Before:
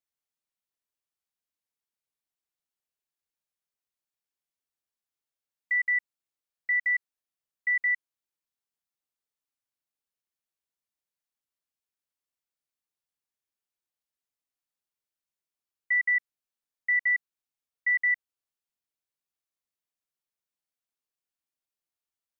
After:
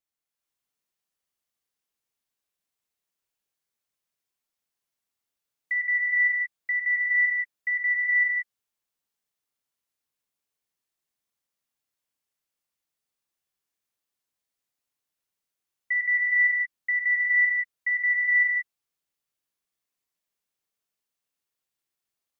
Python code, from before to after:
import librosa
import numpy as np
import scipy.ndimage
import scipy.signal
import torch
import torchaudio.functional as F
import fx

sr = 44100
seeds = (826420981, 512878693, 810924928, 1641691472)

y = fx.rev_gated(x, sr, seeds[0], gate_ms=490, shape='rising', drr_db=-4.0)